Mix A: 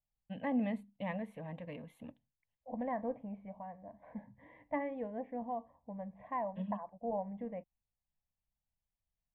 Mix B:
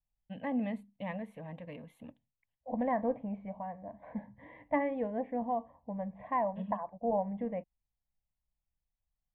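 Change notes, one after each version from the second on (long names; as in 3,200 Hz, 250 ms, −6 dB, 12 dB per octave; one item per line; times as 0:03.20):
second voice +6.0 dB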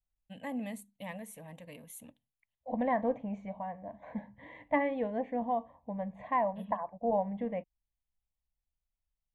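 first voice −5.0 dB
master: remove high-frequency loss of the air 430 metres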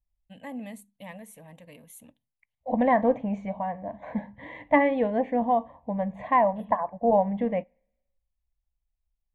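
second voice +8.5 dB
reverb: on, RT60 1.0 s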